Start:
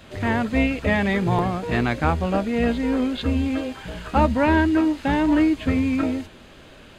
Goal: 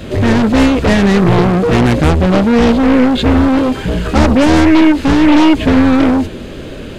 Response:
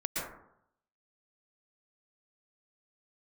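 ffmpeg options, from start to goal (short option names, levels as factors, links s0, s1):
-af "lowshelf=f=610:t=q:w=1.5:g=7,aeval=exprs='0.891*sin(PI/2*2.24*val(0)/0.891)':c=same,aeval=exprs='0.891*(cos(1*acos(clip(val(0)/0.891,-1,1)))-cos(1*PI/2))+0.178*(cos(2*acos(clip(val(0)/0.891,-1,1)))-cos(2*PI/2))+0.224*(cos(5*acos(clip(val(0)/0.891,-1,1)))-cos(5*PI/2))':c=same,volume=0.596"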